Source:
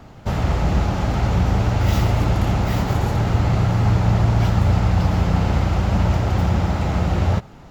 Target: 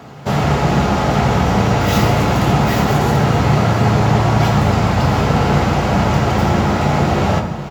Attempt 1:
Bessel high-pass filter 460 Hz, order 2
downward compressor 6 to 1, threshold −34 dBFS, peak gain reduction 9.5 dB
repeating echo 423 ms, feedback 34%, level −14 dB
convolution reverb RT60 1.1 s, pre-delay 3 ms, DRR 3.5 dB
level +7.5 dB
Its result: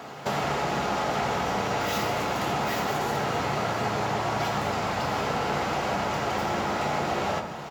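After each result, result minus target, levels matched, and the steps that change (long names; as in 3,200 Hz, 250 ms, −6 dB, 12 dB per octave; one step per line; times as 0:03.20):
downward compressor: peak gain reduction +9.5 dB; 250 Hz band −4.0 dB
remove: downward compressor 6 to 1, threshold −34 dBFS, peak gain reduction 9.5 dB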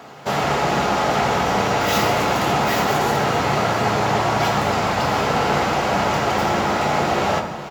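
250 Hz band −4.0 dB
change: Bessel high-pass filter 180 Hz, order 2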